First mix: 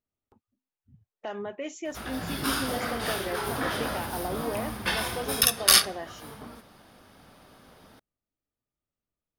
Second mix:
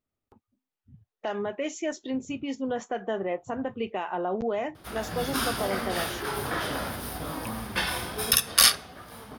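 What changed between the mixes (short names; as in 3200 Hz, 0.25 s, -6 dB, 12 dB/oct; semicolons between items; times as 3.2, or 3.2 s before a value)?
speech +4.5 dB; background: entry +2.90 s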